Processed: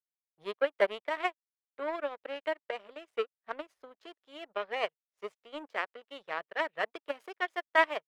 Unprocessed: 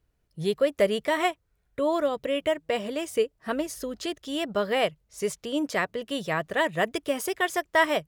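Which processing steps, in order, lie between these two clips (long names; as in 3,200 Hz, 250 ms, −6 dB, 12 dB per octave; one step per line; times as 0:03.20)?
power curve on the samples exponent 2
three-way crossover with the lows and the highs turned down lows −19 dB, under 360 Hz, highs −20 dB, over 3,400 Hz
level +2.5 dB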